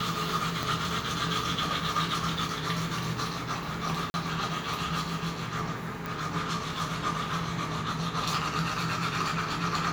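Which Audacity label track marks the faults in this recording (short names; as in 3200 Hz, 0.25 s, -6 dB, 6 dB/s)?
0.630000	0.630000	pop
4.100000	4.140000	gap 41 ms
6.060000	6.060000	pop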